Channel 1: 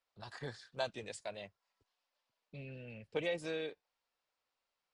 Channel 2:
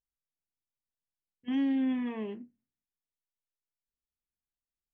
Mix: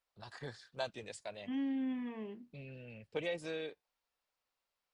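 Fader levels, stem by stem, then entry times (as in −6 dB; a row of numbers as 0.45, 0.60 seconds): −1.5, −7.5 decibels; 0.00, 0.00 seconds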